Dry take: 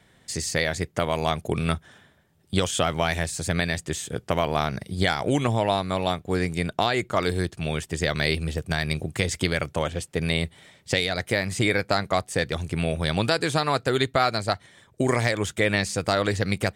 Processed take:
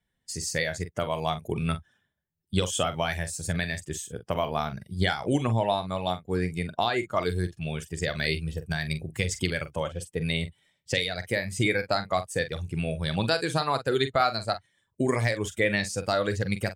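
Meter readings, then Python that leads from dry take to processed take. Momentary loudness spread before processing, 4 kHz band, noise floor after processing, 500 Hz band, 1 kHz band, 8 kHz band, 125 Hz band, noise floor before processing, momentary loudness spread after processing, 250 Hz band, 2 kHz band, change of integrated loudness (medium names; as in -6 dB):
5 LU, -3.5 dB, -78 dBFS, -3.0 dB, -3.0 dB, -3.0 dB, -3.0 dB, -60 dBFS, 7 LU, -3.5 dB, -3.5 dB, -3.0 dB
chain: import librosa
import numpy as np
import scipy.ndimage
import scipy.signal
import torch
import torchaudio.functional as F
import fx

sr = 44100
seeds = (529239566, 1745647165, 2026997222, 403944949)

y = fx.bin_expand(x, sr, power=1.5)
y = fx.doubler(y, sr, ms=44.0, db=-11.0)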